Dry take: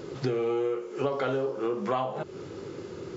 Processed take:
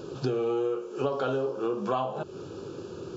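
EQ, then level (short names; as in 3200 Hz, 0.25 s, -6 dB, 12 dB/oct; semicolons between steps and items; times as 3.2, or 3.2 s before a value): Butterworth band-stop 2000 Hz, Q 2.6; 0.0 dB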